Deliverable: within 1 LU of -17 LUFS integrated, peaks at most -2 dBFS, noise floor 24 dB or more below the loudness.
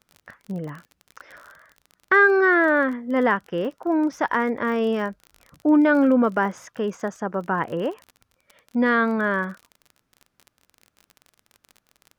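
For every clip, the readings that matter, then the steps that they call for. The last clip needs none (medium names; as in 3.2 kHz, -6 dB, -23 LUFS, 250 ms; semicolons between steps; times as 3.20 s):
tick rate 34 per s; loudness -21.5 LUFS; peak level -7.0 dBFS; loudness target -17.0 LUFS
-> de-click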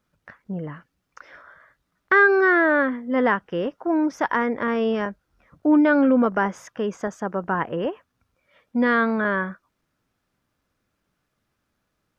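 tick rate 0 per s; loudness -21.5 LUFS; peak level -7.0 dBFS; loudness target -17.0 LUFS
-> trim +4.5 dB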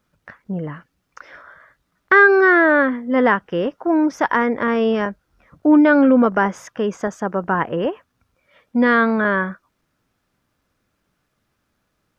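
loudness -17.0 LUFS; peak level -2.5 dBFS; noise floor -72 dBFS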